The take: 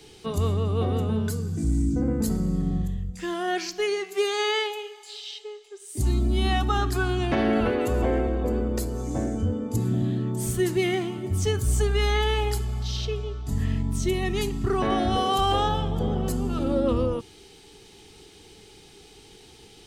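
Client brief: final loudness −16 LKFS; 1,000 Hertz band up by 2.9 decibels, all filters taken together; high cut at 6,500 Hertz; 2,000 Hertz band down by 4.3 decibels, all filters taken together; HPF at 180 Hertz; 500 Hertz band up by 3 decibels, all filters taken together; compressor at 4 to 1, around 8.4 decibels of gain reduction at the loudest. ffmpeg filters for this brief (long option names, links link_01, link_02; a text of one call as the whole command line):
ffmpeg -i in.wav -af "highpass=180,lowpass=6500,equalizer=frequency=500:width_type=o:gain=3.5,equalizer=frequency=1000:width_type=o:gain=4,equalizer=frequency=2000:width_type=o:gain=-7,acompressor=threshold=-28dB:ratio=4,volume=16dB" out.wav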